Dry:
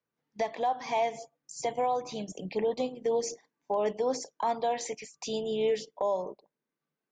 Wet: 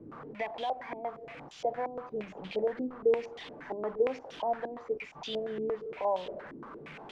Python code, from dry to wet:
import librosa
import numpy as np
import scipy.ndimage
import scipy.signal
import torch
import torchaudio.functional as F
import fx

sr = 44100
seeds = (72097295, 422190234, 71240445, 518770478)

y = fx.delta_mod(x, sr, bps=64000, step_db=-35.5)
y = fx.filter_held_lowpass(y, sr, hz=8.6, low_hz=310.0, high_hz=3300.0)
y = F.gain(torch.from_numpy(y), -6.5).numpy()